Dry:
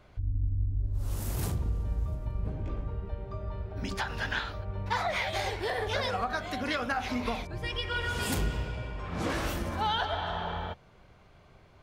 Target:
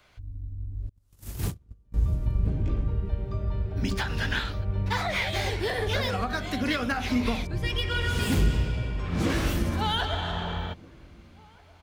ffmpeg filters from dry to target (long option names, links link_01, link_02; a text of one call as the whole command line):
ffmpeg -i in.wav -filter_complex "[0:a]tiltshelf=frequency=1200:gain=-8.5,asettb=1/sr,asplit=3[link_01][link_02][link_03];[link_01]atrim=end=0.894[link_04];[link_02]atrim=start=0.89:end=1.94,asetpts=PTS-STARTPTS,afade=type=in:duration=0.004:curve=qsin,afade=type=out:start_time=1.046:duration=0.004:curve=qsin,agate=range=-35dB:threshold=-32dB:ratio=16:detection=peak[link_05];[link_03]atrim=start=1.936[link_06];[link_04][link_05]acrossfade=duration=0.004:curve1=hsin:curve2=qsin[link_07];[link_07][link_06]acrossfade=duration=0.004:curve1=qsin:curve2=hsin,acrossover=split=390|560|3400[link_08][link_09][link_10][link_11];[link_08]dynaudnorm=framelen=290:gausssize=9:maxgain=16.5dB[link_12];[link_11]aeval=exprs='(tanh(79.4*val(0)+0.4)-tanh(0.4))/79.4':channel_layout=same[link_13];[link_12][link_09][link_10][link_13]amix=inputs=4:normalize=0,asplit=2[link_14][link_15];[link_15]adelay=1574,volume=-24dB,highshelf=frequency=4000:gain=-35.4[link_16];[link_14][link_16]amix=inputs=2:normalize=0" out.wav